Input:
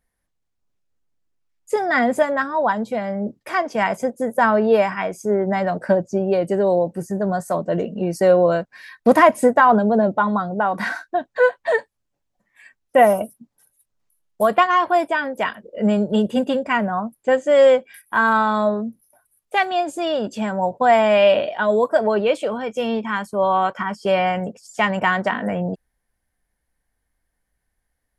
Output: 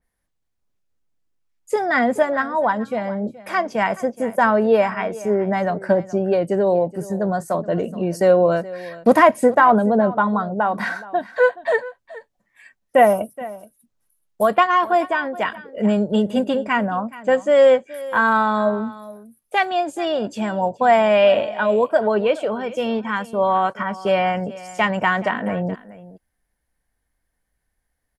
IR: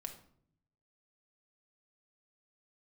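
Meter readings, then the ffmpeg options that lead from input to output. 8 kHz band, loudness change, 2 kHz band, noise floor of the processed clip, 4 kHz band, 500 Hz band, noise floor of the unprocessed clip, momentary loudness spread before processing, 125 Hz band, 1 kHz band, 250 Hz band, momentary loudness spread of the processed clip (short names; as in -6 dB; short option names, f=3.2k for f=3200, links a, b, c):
n/a, 0.0 dB, 0.0 dB, -75 dBFS, -1.0 dB, 0.0 dB, -76 dBFS, 10 LU, 0.0 dB, 0.0 dB, 0.0 dB, 10 LU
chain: -filter_complex "[0:a]asplit=2[a][b];[b]aecho=0:1:424:0.126[c];[a][c]amix=inputs=2:normalize=0,adynamicequalizer=threshold=0.0158:dfrequency=3400:dqfactor=0.7:tfrequency=3400:tqfactor=0.7:attack=5:release=100:ratio=0.375:range=2.5:mode=cutabove:tftype=highshelf"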